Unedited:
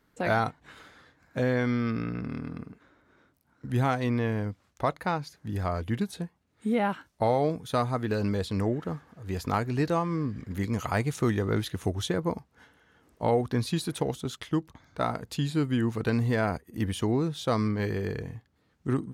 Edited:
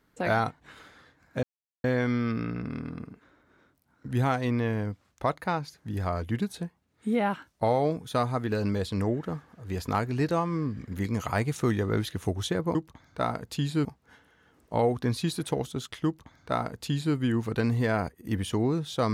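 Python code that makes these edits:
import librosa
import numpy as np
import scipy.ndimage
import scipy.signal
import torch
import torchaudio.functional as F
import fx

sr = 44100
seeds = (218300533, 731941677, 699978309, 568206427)

y = fx.edit(x, sr, fx.insert_silence(at_s=1.43, length_s=0.41),
    fx.duplicate(start_s=14.55, length_s=1.1, to_s=12.34), tone=tone)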